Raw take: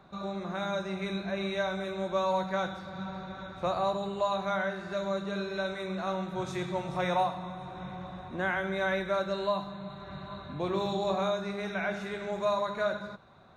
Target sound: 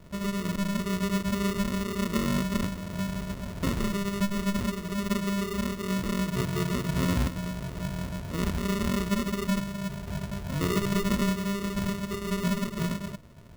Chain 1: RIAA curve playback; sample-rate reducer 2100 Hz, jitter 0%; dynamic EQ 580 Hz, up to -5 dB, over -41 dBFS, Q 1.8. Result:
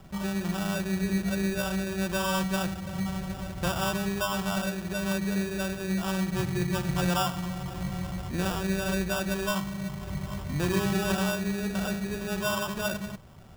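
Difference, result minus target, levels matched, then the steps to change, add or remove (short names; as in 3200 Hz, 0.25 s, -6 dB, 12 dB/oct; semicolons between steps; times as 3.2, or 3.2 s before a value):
sample-rate reducer: distortion -11 dB
change: sample-rate reducer 800 Hz, jitter 0%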